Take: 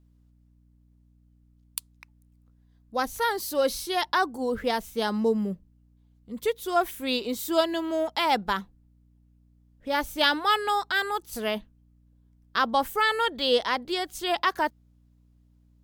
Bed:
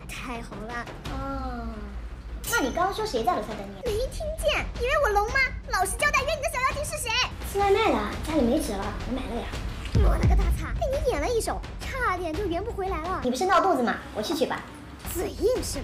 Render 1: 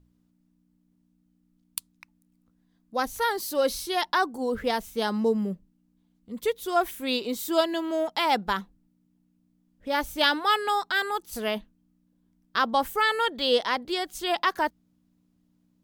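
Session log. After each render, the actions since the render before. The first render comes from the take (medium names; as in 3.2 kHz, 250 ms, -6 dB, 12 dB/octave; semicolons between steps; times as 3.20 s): de-hum 60 Hz, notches 2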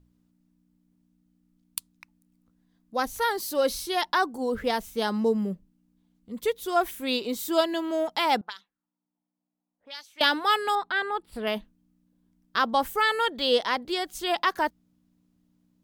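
8.41–10.21 s: auto-wah 780–4800 Hz, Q 2.6, up, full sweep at -23 dBFS; 10.75–11.47 s: boxcar filter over 7 samples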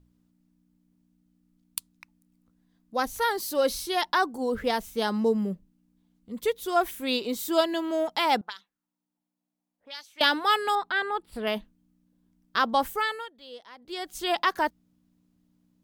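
12.85–14.22 s: dip -21.5 dB, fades 0.45 s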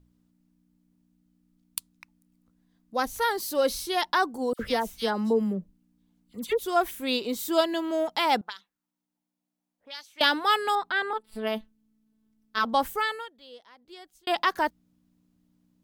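4.53–6.59 s: phase dispersion lows, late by 64 ms, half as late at 2 kHz; 11.13–12.65 s: robot voice 218 Hz; 13.15–14.27 s: fade out linear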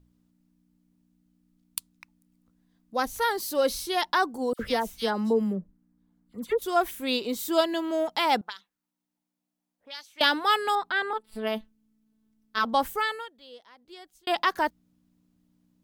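5.56–6.62 s: resonant high shelf 2.1 kHz -7 dB, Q 1.5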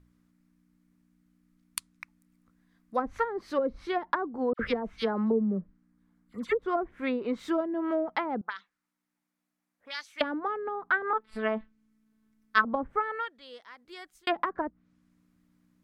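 low-pass that closes with the level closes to 420 Hz, closed at -21.5 dBFS; high-order bell 1.6 kHz +8 dB 1.3 oct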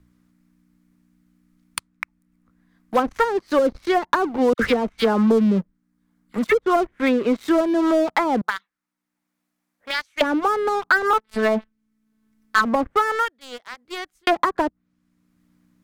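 waveshaping leveller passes 3; three bands compressed up and down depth 40%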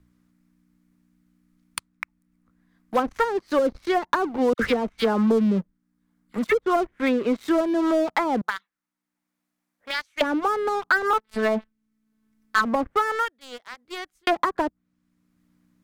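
trim -3 dB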